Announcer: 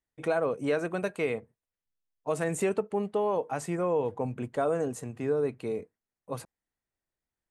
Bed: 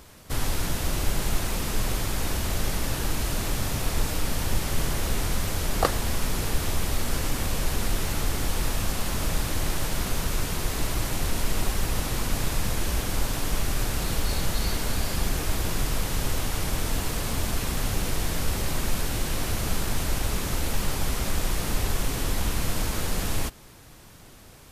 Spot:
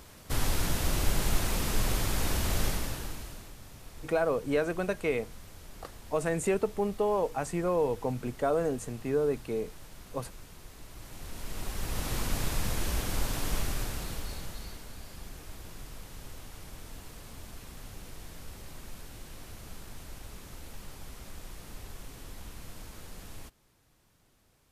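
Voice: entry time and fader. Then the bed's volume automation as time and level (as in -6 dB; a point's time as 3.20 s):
3.85 s, 0.0 dB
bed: 2.65 s -2 dB
3.55 s -21.5 dB
10.86 s -21.5 dB
12.12 s -4.5 dB
13.58 s -4.5 dB
14.88 s -18.5 dB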